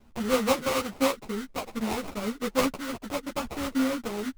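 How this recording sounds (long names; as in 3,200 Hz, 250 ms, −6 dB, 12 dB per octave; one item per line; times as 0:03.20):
aliases and images of a low sample rate 1,700 Hz, jitter 20%
a shimmering, thickened sound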